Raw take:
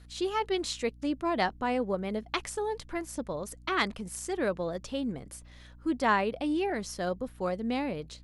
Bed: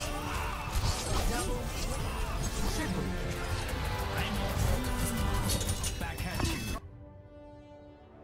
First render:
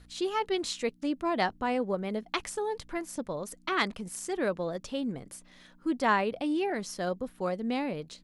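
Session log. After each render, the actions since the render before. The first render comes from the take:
hum removal 60 Hz, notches 2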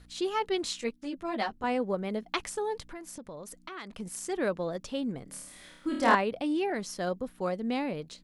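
0:00.81–0:01.64: string-ensemble chorus
0:02.91–0:04.00: downward compressor 4 to 1, threshold −40 dBFS
0:05.25–0:06.15: flutter between parallel walls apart 4.5 metres, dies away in 0.85 s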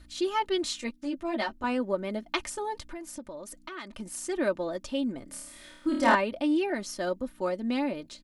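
comb filter 3.3 ms, depth 63%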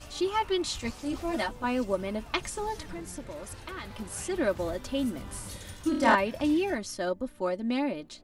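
mix in bed −12 dB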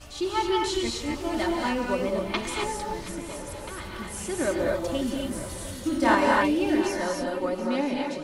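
feedback echo with a long and a short gap by turns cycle 965 ms, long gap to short 3 to 1, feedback 33%, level −15 dB
reverb whose tail is shaped and stops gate 290 ms rising, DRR −0.5 dB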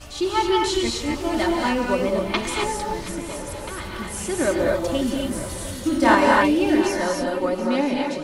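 level +5 dB

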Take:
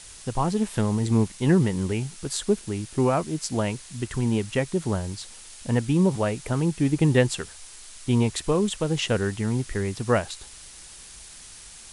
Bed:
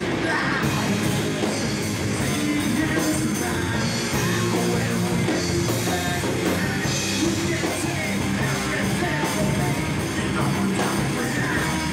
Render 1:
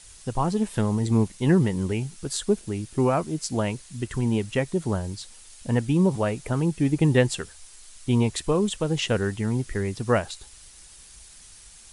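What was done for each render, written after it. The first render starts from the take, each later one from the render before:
broadband denoise 6 dB, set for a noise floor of −45 dBFS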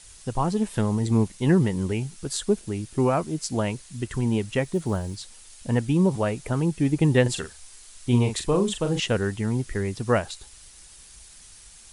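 0:04.63–0:05.18: log-companded quantiser 8 bits
0:07.22–0:09.00: double-tracking delay 41 ms −7 dB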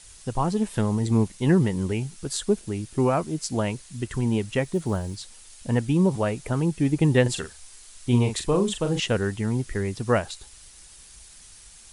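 no processing that can be heard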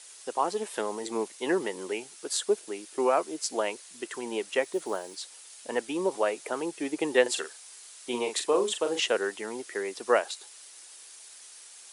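high-pass filter 370 Hz 24 dB per octave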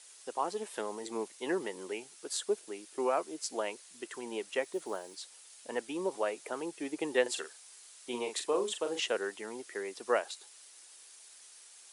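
level −6 dB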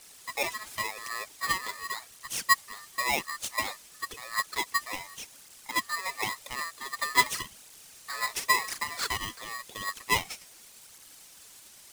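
phase shifter 0.91 Hz, delay 4.2 ms, feedback 70%
ring modulator with a square carrier 1,500 Hz

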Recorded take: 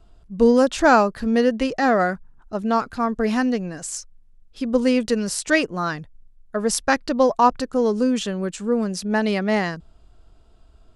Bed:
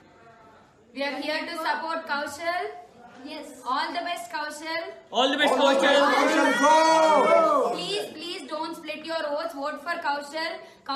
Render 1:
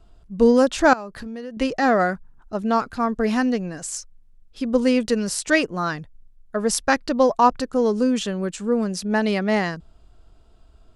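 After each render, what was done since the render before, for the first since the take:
0:00.93–0:01.57: downward compressor, threshold −31 dBFS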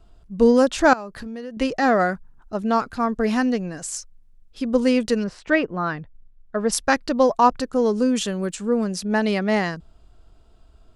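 0:05.23–0:06.71: low-pass filter 1,900 Hz → 3,900 Hz
0:08.15–0:08.55: high-shelf EQ 8,600 Hz +11.5 dB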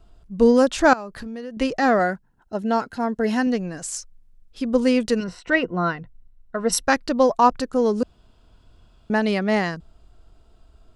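0:01.99–0:03.47: notch comb filter 1,200 Hz
0:05.19–0:06.84: EQ curve with evenly spaced ripples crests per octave 2, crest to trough 9 dB
0:08.03–0:09.10: fill with room tone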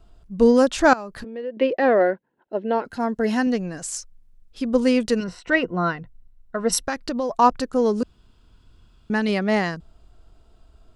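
0:01.24–0:02.85: loudspeaker in its box 280–3,300 Hz, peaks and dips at 360 Hz +6 dB, 530 Hz +8 dB, 750 Hz −4 dB, 1,300 Hz −8 dB
0:06.78–0:07.35: downward compressor, threshold −21 dBFS
0:08.01–0:09.29: parametric band 650 Hz −8.5 dB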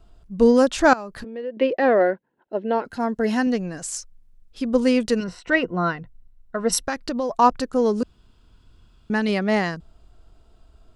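no processing that can be heard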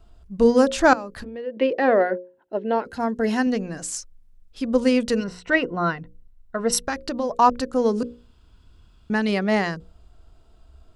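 parametric band 65 Hz +11 dB 0.22 octaves
mains-hum notches 60/120/180/240/300/360/420/480/540 Hz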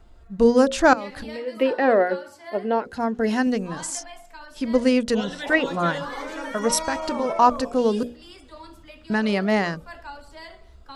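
mix in bed −12 dB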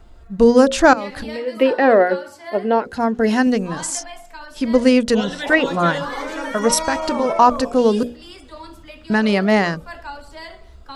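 level +5.5 dB
brickwall limiter −2 dBFS, peak gain reduction 3 dB

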